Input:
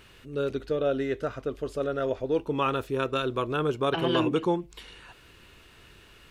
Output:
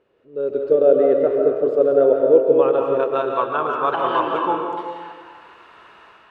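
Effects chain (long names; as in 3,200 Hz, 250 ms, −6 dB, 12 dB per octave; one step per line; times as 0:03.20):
automatic gain control gain up to 16 dB
band-pass filter sweep 490 Hz → 990 Hz, 0:02.62–0:03.48
comb and all-pass reverb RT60 1.6 s, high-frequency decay 0.7×, pre-delay 105 ms, DRR 1 dB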